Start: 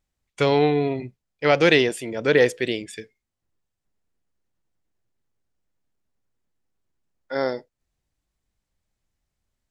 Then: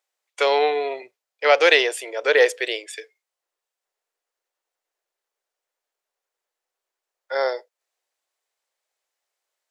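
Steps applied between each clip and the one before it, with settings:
inverse Chebyshev high-pass filter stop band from 230 Hz, stop band 40 dB
level +3.5 dB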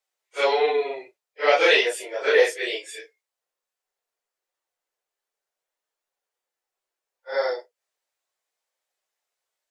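random phases in long frames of 100 ms
level −2 dB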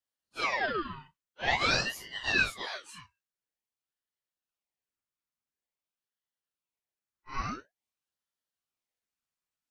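ring modulator whose carrier an LFO sweeps 1,500 Hz, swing 65%, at 0.48 Hz
level −7 dB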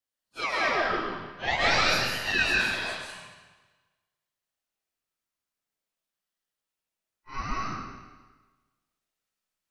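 comb and all-pass reverb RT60 1.3 s, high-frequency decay 0.95×, pre-delay 95 ms, DRR −3.5 dB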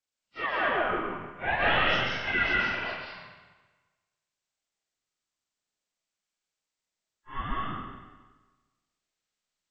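hearing-aid frequency compression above 1,200 Hz 1.5 to 1

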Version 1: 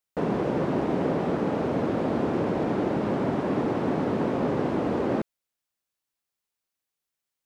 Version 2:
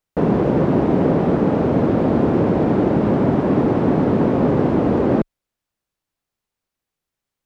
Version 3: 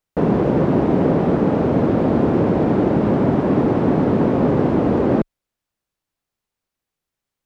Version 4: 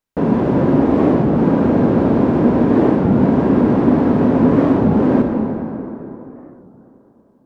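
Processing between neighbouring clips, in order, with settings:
spectral tilt −2 dB per octave; level +6 dB
no processing that can be heard
hollow resonant body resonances 250/980/1,600 Hz, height 6 dB; convolution reverb RT60 3.4 s, pre-delay 23 ms, DRR 2 dB; wow of a warped record 33 1/3 rpm, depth 250 cents; level −1.5 dB

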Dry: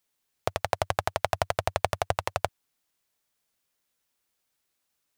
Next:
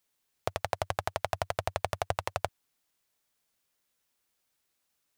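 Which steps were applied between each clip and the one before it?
brickwall limiter −11 dBFS, peak gain reduction 6 dB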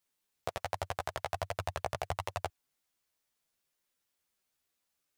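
multi-voice chorus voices 2, 1.3 Hz, delay 13 ms, depth 3 ms
level −1 dB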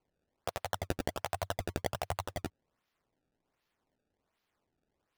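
sample-and-hold swept by an LFO 24×, swing 160% 1.3 Hz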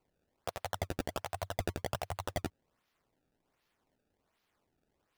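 brickwall limiter −26 dBFS, peak gain reduction 9 dB
level +3 dB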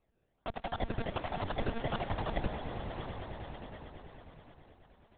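sub-octave generator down 2 octaves, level 0 dB
echo that builds up and dies away 107 ms, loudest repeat 5, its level −14 dB
one-pitch LPC vocoder at 8 kHz 230 Hz
level +1 dB

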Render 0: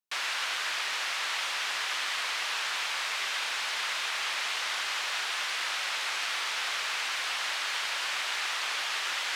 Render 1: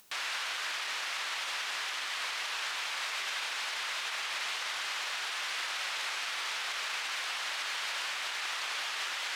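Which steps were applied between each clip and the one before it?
upward compression, threshold −37 dBFS
brickwall limiter −26.5 dBFS, peak gain reduction 7 dB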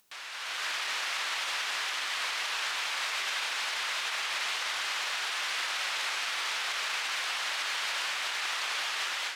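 automatic gain control gain up to 11 dB
level −8 dB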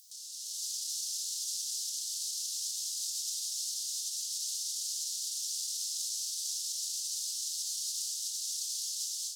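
inverse Chebyshev band-stop filter 210–2,400 Hz, stop band 50 dB
low-shelf EQ 68 Hz −9.5 dB
backwards echo 367 ms −18.5 dB
level +8 dB

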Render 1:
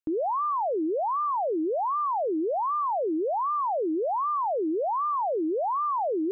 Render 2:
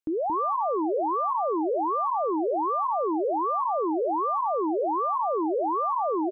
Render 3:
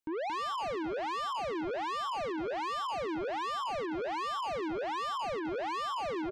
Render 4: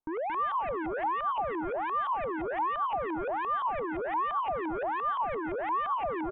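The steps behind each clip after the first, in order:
single-tap delay 226 ms −6 dB
soft clipping −33.5 dBFS, distortion −8 dB
auto-filter low-pass saw up 5.8 Hz 810–2,200 Hz; low-shelf EQ 61 Hz +10.5 dB; downsampling to 8,000 Hz

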